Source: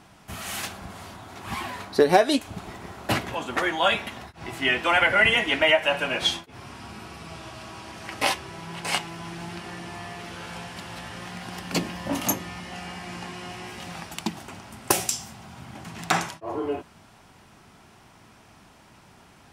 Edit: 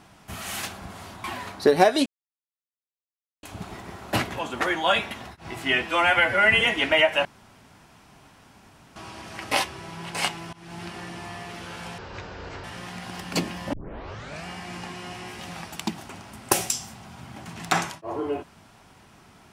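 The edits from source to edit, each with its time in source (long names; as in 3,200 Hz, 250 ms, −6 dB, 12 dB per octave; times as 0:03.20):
0:01.24–0:01.57: remove
0:02.39: splice in silence 1.37 s
0:04.79–0:05.31: time-stretch 1.5×
0:05.95–0:07.66: fill with room tone
0:09.23–0:09.53: fade in, from −22.5 dB
0:10.68–0:11.03: play speed 53%
0:12.12: tape start 0.73 s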